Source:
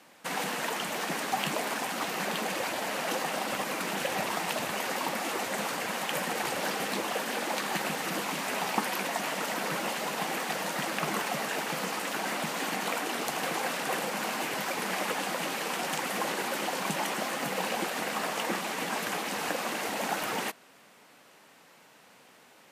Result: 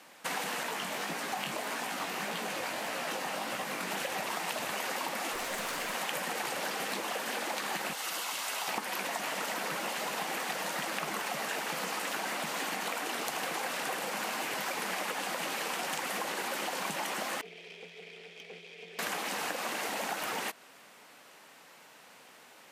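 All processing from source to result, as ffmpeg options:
-filter_complex "[0:a]asettb=1/sr,asplit=3[s0][s1][s2];[s0]atrim=end=0.634[s3];[s1]atrim=start=0.63:end=3.91,asetpts=PTS-STARTPTS,afade=t=in:d=0.004:c=qsin,afade=t=out:st=3.276:d=0.004:c=qsin,bass=f=250:g=4,treble=f=4000:g=-1,flanger=delay=16.5:depth=5.4:speed=1.7[s4];[s2]atrim=start=3.906[s5];[s3][s4]acrossfade=d=0.004:c1=hsin:c2=qsin[s6];[s6][s5]acrossfade=d=0.004:c1=qsin:c2=hsin,asettb=1/sr,asplit=3[s7][s8][s9];[s7]atrim=end=5.334[s10];[s8]atrim=start=5.33:end=5.95,asetpts=PTS-STARTPTS,afade=t=in:d=0.004:c=qsin,afade=t=out:st=0.616:d=0.004:c=qsin,bandreject=f=820:w=13,aeval=exprs='clip(val(0),-1,0.0188)':c=same[s11];[s9]atrim=start=5.946[s12];[s10][s11]acrossfade=d=0.004:c1=hsin:c2=qsin[s13];[s13][s12]acrossfade=d=0.004:c1=qsin:c2=hsin,asettb=1/sr,asplit=3[s14][s15][s16];[s14]atrim=end=7.934[s17];[s15]atrim=start=7.93:end=8.68,asetpts=PTS-STARTPTS,afade=t=in:d=0.004:c=qsin,afade=t=out:st=0.746:d=0.004:c=qsin,highpass=f=1400:p=1,equalizer=f=1800:w=4.5:g=-6,bandreject=f=2400:w=12[s18];[s16]atrim=start=8.676[s19];[s17][s18]acrossfade=d=0.004:c1=hsin:c2=qsin[s20];[s20][s19]acrossfade=d=0.004:c1=qsin:c2=hsin,asettb=1/sr,asplit=3[s21][s22][s23];[s21]atrim=end=17.414[s24];[s22]atrim=start=17.41:end=18.99,asetpts=PTS-STARTPTS,afade=t=in:d=0.004:c=qsin,afade=t=out:st=1.576:d=0.004:c=qsin,asplit=3[s25][s26][s27];[s25]bandpass=f=270:t=q:w=8,volume=1[s28];[s26]bandpass=f=2290:t=q:w=8,volume=0.501[s29];[s27]bandpass=f=3010:t=q:w=8,volume=0.355[s30];[s28][s29][s30]amix=inputs=3:normalize=0,aeval=exprs='(tanh(112*val(0)+0.75)-tanh(0.75))/112':c=same,afreqshift=170[s31];[s23]atrim=start=18.986[s32];[s24][s31]acrossfade=d=0.004:c1=hsin:c2=qsin[s33];[s33][s32]acrossfade=d=0.004:c1=qsin:c2=hsin,acompressor=threshold=0.0224:ratio=6,lowshelf=f=370:g=-6.5,volume=1.33"

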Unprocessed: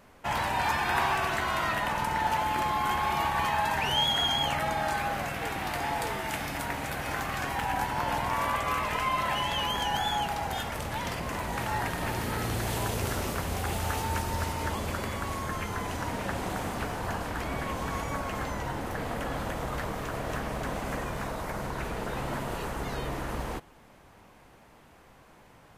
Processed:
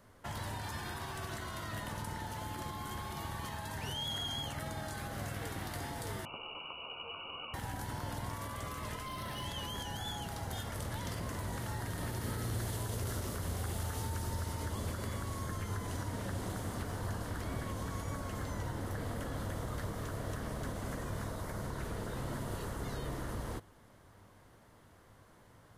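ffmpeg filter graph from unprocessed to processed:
-filter_complex "[0:a]asettb=1/sr,asplit=3[s0][s1][s2];[s0]atrim=end=6.254[s3];[s1]atrim=start=6.25:end=7.54,asetpts=PTS-STARTPTS,afade=t=in:d=0.004:c=qsin,afade=t=out:st=1.286:d=0.004:c=qsin,asuperstop=centerf=1100:order=8:qfactor=0.96,asplit=2[s4][s5];[s5]adelay=13,volume=0.501[s6];[s4][s6]amix=inputs=2:normalize=0,atrim=end_sample=56889,lowpass=f=2600:t=q:w=0.5098,lowpass=f=2600:t=q:w=0.6013,lowpass=f=2600:t=q:w=0.9,lowpass=f=2600:t=q:w=2.563,afreqshift=-3000[s7];[s2]atrim=start=7.536[s8];[s3][s7]acrossfade=d=0.004:c1=hsin:c2=qsin[s9];[s9][s8]acrossfade=d=0.004:c1=qsin:c2=hsin,asettb=1/sr,asplit=3[s10][s11][s12];[s10]atrim=end=9.064[s13];[s11]atrim=start=9.06:end=9.46,asetpts=PTS-STARTPTS,afade=t=in:d=0.004:c=qsin,afade=t=out:st=0.396:d=0.004:c=qsin,asoftclip=type=hard:threshold=0.0531,equalizer=f=7200:w=4.7:g=-10.5[s14];[s12]atrim=start=9.456[s15];[s13][s14]acrossfade=d=0.004:c1=hsin:c2=qsin[s16];[s16][s15]acrossfade=d=0.004:c1=qsin:c2=hsin,equalizer=f=100:t=o:w=0.33:g=10,equalizer=f=800:t=o:w=0.33:g=-5,equalizer=f=2500:t=o:w=0.33:g=-9,equalizer=f=10000:t=o:w=0.33:g=4,alimiter=limit=0.075:level=0:latency=1:release=78,acrossover=split=460|3000[s17][s18][s19];[s18]acompressor=threshold=0.0112:ratio=6[s20];[s17][s20][s19]amix=inputs=3:normalize=0,volume=0.562"

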